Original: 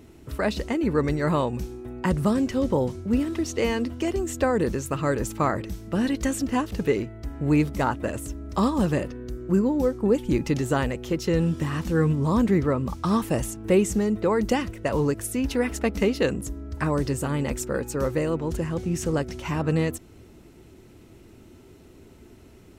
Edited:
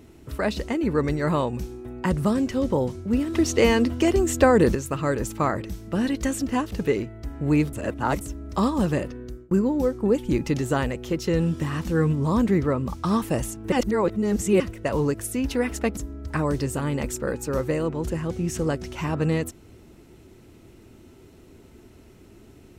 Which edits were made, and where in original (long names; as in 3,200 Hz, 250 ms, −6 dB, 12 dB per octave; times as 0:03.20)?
0:03.34–0:04.75: clip gain +6 dB
0:07.73–0:08.21: reverse
0:09.12–0:09.51: fade out equal-power
0:13.72–0:14.60: reverse
0:15.97–0:16.44: remove